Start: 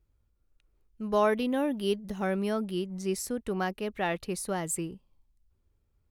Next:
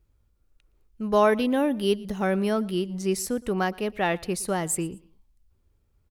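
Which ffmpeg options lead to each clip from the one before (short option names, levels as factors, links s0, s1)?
-af "aecho=1:1:116|232:0.0708|0.0241,volume=1.78"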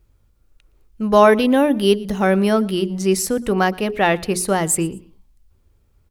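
-af "bandreject=f=60:t=h:w=6,bandreject=f=120:t=h:w=6,bandreject=f=180:t=h:w=6,bandreject=f=240:t=h:w=6,bandreject=f=300:t=h:w=6,bandreject=f=360:t=h:w=6,bandreject=f=420:t=h:w=6,volume=2.66"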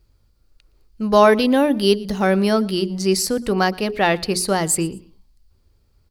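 -af "equalizer=f=4600:w=3.8:g=12,volume=0.891"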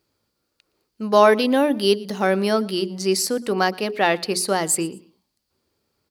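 -af "highpass=230,volume=0.891"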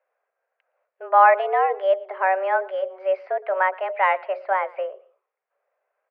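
-af "highpass=f=310:t=q:w=0.5412,highpass=f=310:t=q:w=1.307,lowpass=f=2100:t=q:w=0.5176,lowpass=f=2100:t=q:w=0.7071,lowpass=f=2100:t=q:w=1.932,afreqshift=190"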